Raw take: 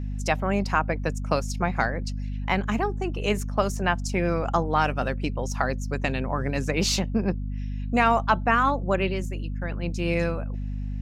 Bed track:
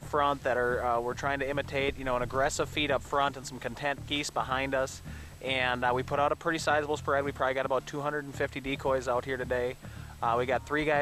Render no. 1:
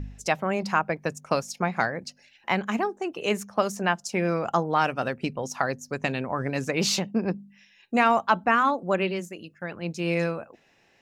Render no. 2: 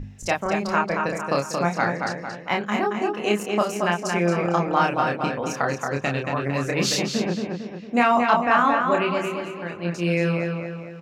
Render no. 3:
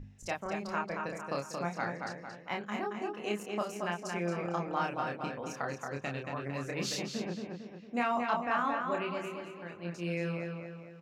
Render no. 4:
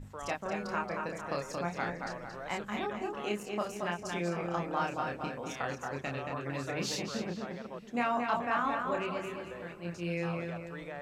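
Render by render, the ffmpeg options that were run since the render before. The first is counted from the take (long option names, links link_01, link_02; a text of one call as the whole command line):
ffmpeg -i in.wav -af "bandreject=frequency=50:width_type=h:width=4,bandreject=frequency=100:width_type=h:width=4,bandreject=frequency=150:width_type=h:width=4,bandreject=frequency=200:width_type=h:width=4,bandreject=frequency=250:width_type=h:width=4" out.wav
ffmpeg -i in.wav -filter_complex "[0:a]asplit=2[link_01][link_02];[link_02]adelay=29,volume=-3dB[link_03];[link_01][link_03]amix=inputs=2:normalize=0,asplit=2[link_04][link_05];[link_05]adelay=226,lowpass=frequency=4000:poles=1,volume=-4dB,asplit=2[link_06][link_07];[link_07]adelay=226,lowpass=frequency=4000:poles=1,volume=0.5,asplit=2[link_08][link_09];[link_09]adelay=226,lowpass=frequency=4000:poles=1,volume=0.5,asplit=2[link_10][link_11];[link_11]adelay=226,lowpass=frequency=4000:poles=1,volume=0.5,asplit=2[link_12][link_13];[link_13]adelay=226,lowpass=frequency=4000:poles=1,volume=0.5,asplit=2[link_14][link_15];[link_15]adelay=226,lowpass=frequency=4000:poles=1,volume=0.5[link_16];[link_04][link_06][link_08][link_10][link_12][link_14][link_16]amix=inputs=7:normalize=0" out.wav
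ffmpeg -i in.wav -af "volume=-12.5dB" out.wav
ffmpeg -i in.wav -i bed.wav -filter_complex "[1:a]volume=-16.5dB[link_01];[0:a][link_01]amix=inputs=2:normalize=0" out.wav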